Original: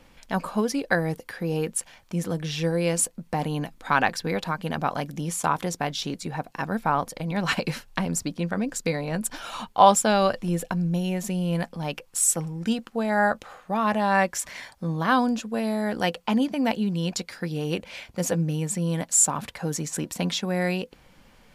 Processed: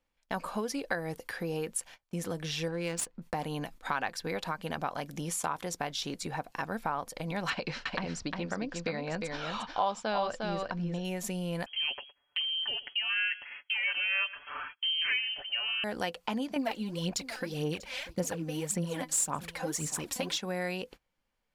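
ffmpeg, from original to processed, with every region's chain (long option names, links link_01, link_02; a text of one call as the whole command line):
ffmpeg -i in.wav -filter_complex "[0:a]asettb=1/sr,asplit=3[link_01][link_02][link_03];[link_01]atrim=end=2.684[link_04];[link_02]atrim=start=2.68:end=3.22,asetpts=PTS-STARTPTS,afade=type=in:duration=0.004:curve=qsin,afade=type=out:start_time=0.536:duration=0.004:curve=qsin,equalizer=frequency=620:width=2.7:gain=-9,adynamicsmooth=sensitivity=4.5:basefreq=2700[link_05];[link_03]atrim=start=3.216[link_06];[link_04][link_05]acrossfade=duration=0.004:curve1=hsin:curve2=qsin[link_07];[link_07][link_06]acrossfade=duration=0.004:curve1=qsin:curve2=hsin,asettb=1/sr,asplit=3[link_08][link_09][link_10];[link_08]atrim=end=7.504[link_11];[link_09]atrim=start=7.5:end=11.05,asetpts=PTS-STARTPTS,afade=type=in:duration=0.004:curve=qsin,afade=type=out:start_time=3.546:duration=0.004:curve=qsin,lowpass=frequency=5400:width=0.5412,lowpass=frequency=5400:width=1.3066,aecho=1:1:354:0.473,atrim=end_sample=156555[link_12];[link_10]atrim=start=11.046[link_13];[link_11][link_12]acrossfade=duration=0.004:curve1=hsin:curve2=qsin[link_14];[link_14][link_13]acrossfade=duration=0.004:curve1=qsin:curve2=hsin,asettb=1/sr,asplit=3[link_15][link_16][link_17];[link_15]atrim=end=11.664[link_18];[link_16]atrim=start=11.66:end=15.84,asetpts=PTS-STARTPTS,afade=type=in:duration=0.004:curve=qsin,afade=type=out:start_time=4.176:duration=0.004:curve=qsin,aecho=1:1:6.6:0.83,atrim=end_sample=184338,aecho=1:1:114|228:0.0944|0.017,atrim=end_sample=184338,lowpass=frequency=2800:width_type=q:width=0.5098,lowpass=frequency=2800:width_type=q:width=0.6013,lowpass=frequency=2800:width_type=q:width=0.9,lowpass=frequency=2800:width_type=q:width=2.563,afreqshift=-3300[link_19];[link_17]atrim=start=15.836[link_20];[link_18][link_19]acrossfade=duration=0.004:curve1=hsin:curve2=qsin[link_21];[link_21][link_20]acrossfade=duration=0.004:curve1=qsin:curve2=hsin,asettb=1/sr,asplit=3[link_22][link_23][link_24];[link_22]atrim=end=16.564[link_25];[link_23]atrim=start=16.56:end=20.38,asetpts=PTS-STARTPTS,afade=type=in:duration=0.004:curve=qsin,afade=type=out:start_time=3.816:duration=0.004:curve=qsin,aphaser=in_gain=1:out_gain=1:delay=4:decay=0.66:speed=1.8:type=sinusoidal,aecho=1:1:642:0.106,atrim=end_sample=168462[link_26];[link_24]atrim=start=20.376[link_27];[link_25][link_26]acrossfade=duration=0.004:curve1=hsin:curve2=qsin[link_28];[link_28][link_27]acrossfade=duration=0.004:curve1=qsin:curve2=hsin,agate=range=-26dB:threshold=-43dB:ratio=16:detection=peak,equalizer=frequency=170:width_type=o:width=1.9:gain=-6,acompressor=threshold=-33dB:ratio=2.5" out.wav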